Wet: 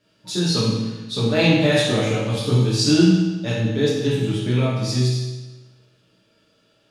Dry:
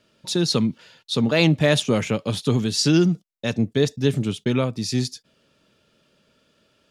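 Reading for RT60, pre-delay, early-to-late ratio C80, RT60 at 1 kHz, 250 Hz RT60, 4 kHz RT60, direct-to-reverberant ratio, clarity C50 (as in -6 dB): 1.2 s, 6 ms, 2.5 dB, 1.2 s, 1.2 s, 1.1 s, -8.0 dB, -0.5 dB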